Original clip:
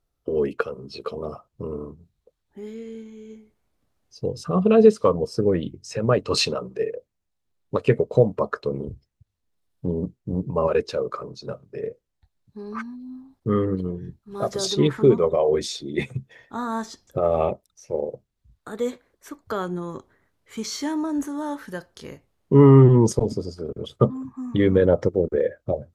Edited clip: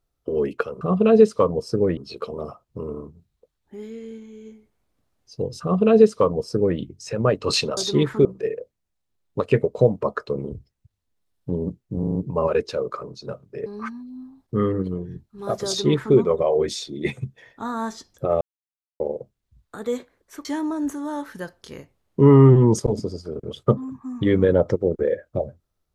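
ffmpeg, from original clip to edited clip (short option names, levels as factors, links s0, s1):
-filter_complex "[0:a]asplit=13[s0][s1][s2][s3][s4][s5][s6][s7][s8][s9][s10][s11][s12];[s0]atrim=end=0.812[s13];[s1]atrim=start=4.458:end=5.622[s14];[s2]atrim=start=0.808:end=6.612[s15];[s3]atrim=start=14.608:end=15.092[s16];[s4]atrim=start=6.608:end=10.392[s17];[s5]atrim=start=10.348:end=10.392[s18];[s6]atrim=start=10.348:end=10.392[s19];[s7]atrim=start=10.348:end=10.392[s20];[s8]atrim=start=10.348:end=11.862[s21];[s9]atrim=start=12.588:end=17.34,asetpts=PTS-STARTPTS,afade=t=out:st=4.748:d=0.004:c=hsin[s22];[s10]atrim=start=17.34:end=17.93,asetpts=PTS-STARTPTS,volume=0[s23];[s11]atrim=start=17.93:end=19.382,asetpts=PTS-STARTPTS,afade=t=in:d=0.004:c=hsin[s24];[s12]atrim=start=20.778[s25];[s13][s14]acrossfade=d=0.004:c1=hsin:c2=hsin[s26];[s26][s15]acrossfade=d=0.004:c1=hsin:c2=hsin[s27];[s27][s16]acrossfade=d=0.004:c1=hsin:c2=hsin[s28];[s28][s17]acrossfade=d=0.004:c1=hsin:c2=hsin[s29];[s29][s18]acrossfade=d=0.004:c1=hsin:c2=hsin[s30];[s30][s19]acrossfade=d=0.004:c1=hsin:c2=hsin[s31];[s31][s20]acrossfade=d=0.004:c1=hsin:c2=hsin[s32];[s32][s21]acrossfade=d=0.004:c1=hsin:c2=hsin[s33];[s22][s23][s24]concat=n=3:v=0:a=1[s34];[s33][s34]acrossfade=d=0.004:c1=hsin:c2=hsin[s35];[s35][s25]acrossfade=d=0.004:c1=hsin:c2=hsin"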